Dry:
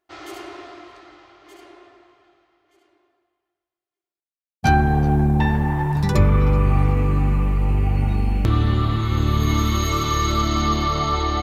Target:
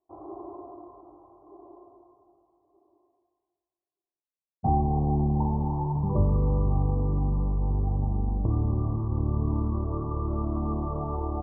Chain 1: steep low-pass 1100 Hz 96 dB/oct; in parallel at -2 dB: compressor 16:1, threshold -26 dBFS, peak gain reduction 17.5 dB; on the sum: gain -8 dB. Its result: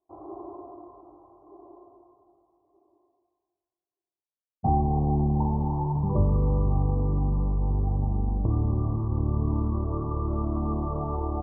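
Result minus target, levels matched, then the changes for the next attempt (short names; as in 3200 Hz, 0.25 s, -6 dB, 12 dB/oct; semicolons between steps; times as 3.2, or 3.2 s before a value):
compressor: peak gain reduction -5.5 dB
change: compressor 16:1, threshold -32 dBFS, peak gain reduction 23 dB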